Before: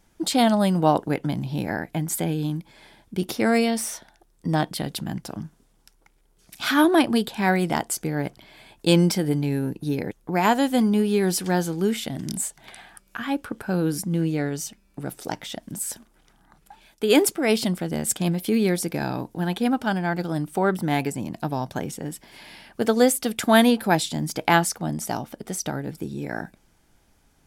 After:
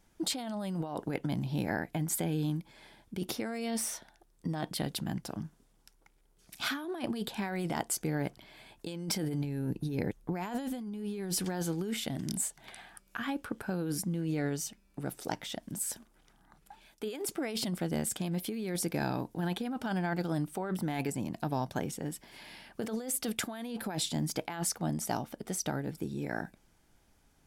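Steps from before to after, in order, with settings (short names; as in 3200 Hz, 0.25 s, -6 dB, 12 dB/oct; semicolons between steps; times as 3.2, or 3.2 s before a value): 9.44–11.45 low shelf 170 Hz +7.5 dB; negative-ratio compressor -25 dBFS, ratio -1; gain -8.5 dB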